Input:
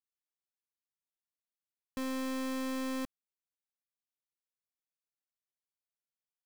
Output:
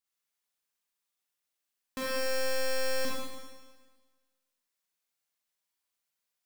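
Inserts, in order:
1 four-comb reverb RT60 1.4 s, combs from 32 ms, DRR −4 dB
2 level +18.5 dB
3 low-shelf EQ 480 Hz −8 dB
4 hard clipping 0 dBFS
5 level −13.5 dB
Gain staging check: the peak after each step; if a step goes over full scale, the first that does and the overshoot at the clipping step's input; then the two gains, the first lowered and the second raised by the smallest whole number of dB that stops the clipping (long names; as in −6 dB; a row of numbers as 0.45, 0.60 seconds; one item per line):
−20.0, −1.5, −5.5, −5.5, −19.0 dBFS
no step passes full scale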